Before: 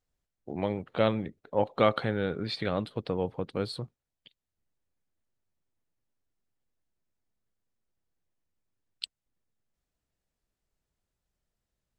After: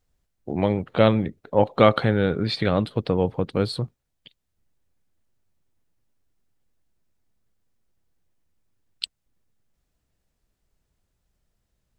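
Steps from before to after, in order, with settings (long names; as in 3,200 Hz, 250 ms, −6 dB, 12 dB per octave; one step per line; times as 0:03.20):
low-shelf EQ 210 Hz +5 dB
level +7 dB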